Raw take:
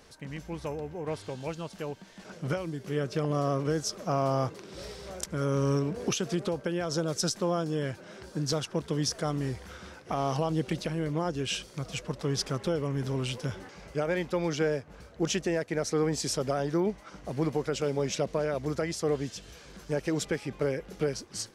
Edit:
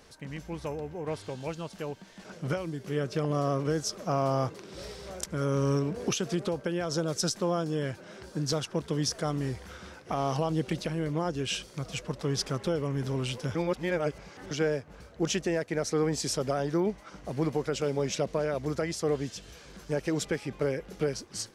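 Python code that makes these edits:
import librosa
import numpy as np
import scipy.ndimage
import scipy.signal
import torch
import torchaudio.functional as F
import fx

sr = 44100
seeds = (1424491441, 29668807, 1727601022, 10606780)

y = fx.edit(x, sr, fx.reverse_span(start_s=13.55, length_s=0.96), tone=tone)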